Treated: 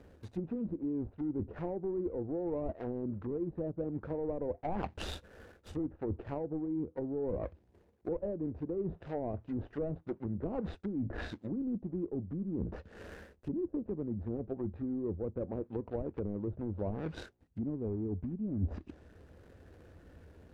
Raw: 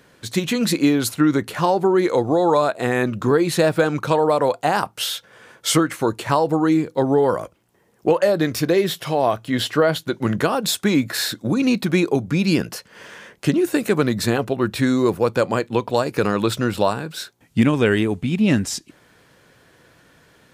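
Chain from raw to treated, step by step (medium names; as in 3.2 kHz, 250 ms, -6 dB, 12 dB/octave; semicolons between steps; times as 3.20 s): median filter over 41 samples; low-pass that closes with the level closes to 390 Hz, closed at -17.5 dBFS; reverse; compression 10:1, threshold -32 dBFS, peak gain reduction 20 dB; reverse; resonant low shelf 100 Hz +7 dB, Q 3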